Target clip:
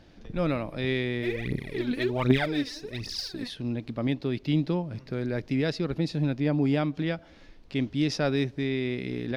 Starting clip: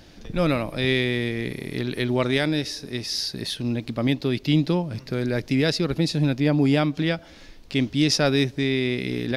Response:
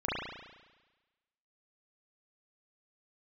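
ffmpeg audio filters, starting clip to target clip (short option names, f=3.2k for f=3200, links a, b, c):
-filter_complex "[0:a]lowpass=f=2.4k:p=1,asplit=3[a][b][c];[a]afade=t=out:st=1.22:d=0.02[d];[b]aphaser=in_gain=1:out_gain=1:delay=4.2:decay=0.78:speed=1.3:type=triangular,afade=t=in:st=1.22:d=0.02,afade=t=out:st=3.47:d=0.02[e];[c]afade=t=in:st=3.47:d=0.02[f];[d][e][f]amix=inputs=3:normalize=0,volume=-5dB"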